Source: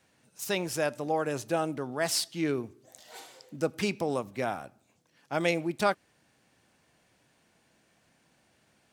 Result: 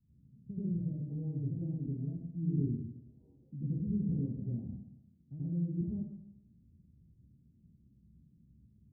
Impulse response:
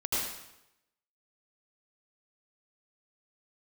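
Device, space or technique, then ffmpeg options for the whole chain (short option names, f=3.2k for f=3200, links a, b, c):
club heard from the street: -filter_complex "[0:a]alimiter=limit=-22.5dB:level=0:latency=1:release=482,lowpass=f=180:w=0.5412,lowpass=f=180:w=1.3066[a];[1:a]atrim=start_sample=2205[b];[a][b]afir=irnorm=-1:irlink=0,volume=5.5dB"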